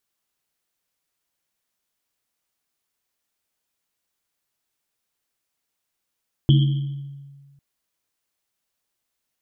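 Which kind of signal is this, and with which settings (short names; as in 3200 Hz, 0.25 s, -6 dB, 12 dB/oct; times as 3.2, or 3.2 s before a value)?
Risset drum, pitch 140 Hz, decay 1.64 s, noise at 3200 Hz, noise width 320 Hz, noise 10%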